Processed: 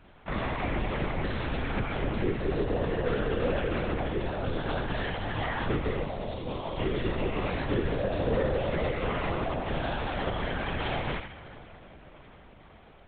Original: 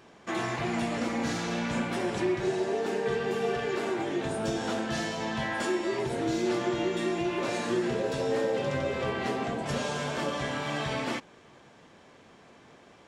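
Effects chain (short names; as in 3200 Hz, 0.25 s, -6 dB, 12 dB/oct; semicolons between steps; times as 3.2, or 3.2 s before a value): 6.03–6.78 fixed phaser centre 700 Hz, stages 4; thinning echo 78 ms, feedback 42%, level -8 dB; on a send at -13.5 dB: reverb RT60 5.7 s, pre-delay 47 ms; on the sum: LPC vocoder at 8 kHz whisper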